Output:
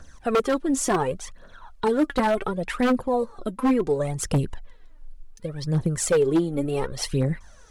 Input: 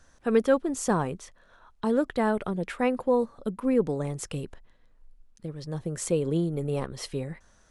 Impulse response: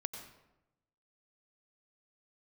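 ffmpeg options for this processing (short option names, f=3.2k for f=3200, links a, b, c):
-filter_complex "[0:a]asplit=2[a][b];[b]acompressor=threshold=-32dB:ratio=6,volume=-0.5dB[c];[a][c]amix=inputs=2:normalize=0,aphaser=in_gain=1:out_gain=1:delay=3.9:decay=0.66:speed=0.69:type=triangular,aeval=exprs='0.211*(abs(mod(val(0)/0.211+3,4)-2)-1)':c=same"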